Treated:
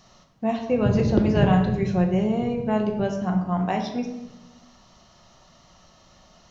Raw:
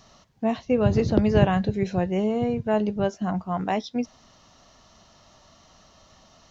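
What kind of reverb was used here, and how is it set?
rectangular room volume 420 cubic metres, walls mixed, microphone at 0.93 metres
level −1.5 dB

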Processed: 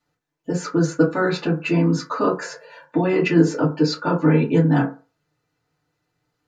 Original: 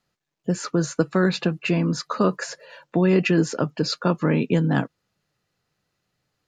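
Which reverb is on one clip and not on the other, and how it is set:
feedback delay network reverb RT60 0.33 s, low-frequency decay 0.85×, high-frequency decay 0.4×, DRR −6.5 dB
level −5.5 dB

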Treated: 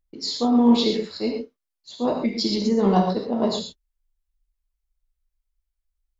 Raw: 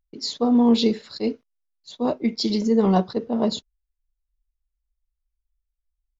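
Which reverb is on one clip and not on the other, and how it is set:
reverb whose tail is shaped and stops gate 150 ms flat, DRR 1 dB
level −1 dB

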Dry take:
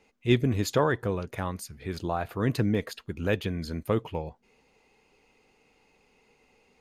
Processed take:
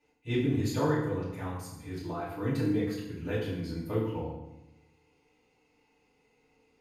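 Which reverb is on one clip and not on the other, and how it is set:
feedback delay network reverb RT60 0.9 s, low-frequency decay 1.45×, high-frequency decay 0.8×, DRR −10 dB
level −16 dB

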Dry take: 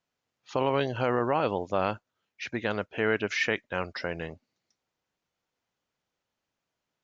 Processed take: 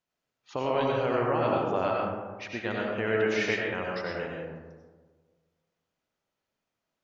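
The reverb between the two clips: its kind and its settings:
comb and all-pass reverb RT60 1.5 s, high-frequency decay 0.35×, pre-delay 55 ms, DRR −2.5 dB
level −4.5 dB

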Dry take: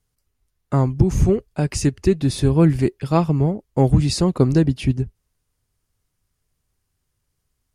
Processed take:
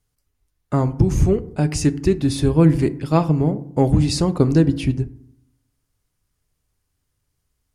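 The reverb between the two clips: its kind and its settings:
feedback delay network reverb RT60 0.69 s, low-frequency decay 1.35×, high-frequency decay 0.45×, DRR 12 dB

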